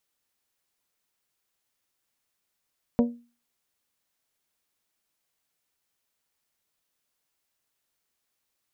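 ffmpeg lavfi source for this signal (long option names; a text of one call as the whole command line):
ffmpeg -f lavfi -i "aevalsrc='0.178*pow(10,-3*t/0.35)*sin(2*PI*238*t)+0.0944*pow(10,-3*t/0.215)*sin(2*PI*476*t)+0.0501*pow(10,-3*t/0.19)*sin(2*PI*571.2*t)+0.0266*pow(10,-3*t/0.162)*sin(2*PI*714*t)+0.0141*pow(10,-3*t/0.133)*sin(2*PI*952*t)':duration=0.89:sample_rate=44100" out.wav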